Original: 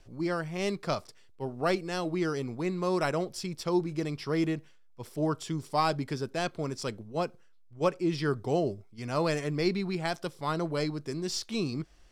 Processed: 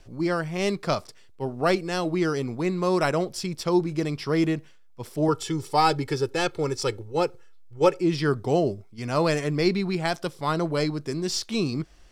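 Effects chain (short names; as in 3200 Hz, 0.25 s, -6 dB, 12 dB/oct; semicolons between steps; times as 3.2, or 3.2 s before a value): 5.28–8.01 comb 2.3 ms, depth 76%; gain +5.5 dB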